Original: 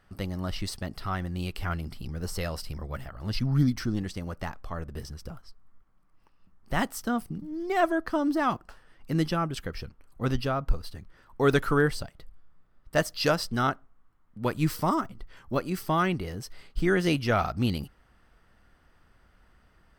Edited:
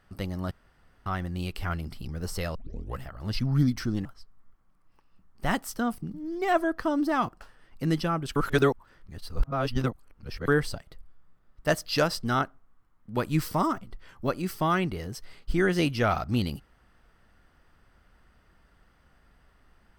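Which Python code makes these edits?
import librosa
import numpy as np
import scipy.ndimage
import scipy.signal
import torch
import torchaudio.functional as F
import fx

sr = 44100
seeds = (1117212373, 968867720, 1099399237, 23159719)

y = fx.edit(x, sr, fx.room_tone_fill(start_s=0.51, length_s=0.55),
    fx.tape_start(start_s=2.55, length_s=0.45),
    fx.cut(start_s=4.05, length_s=1.28),
    fx.reverse_span(start_s=9.64, length_s=2.12), tone=tone)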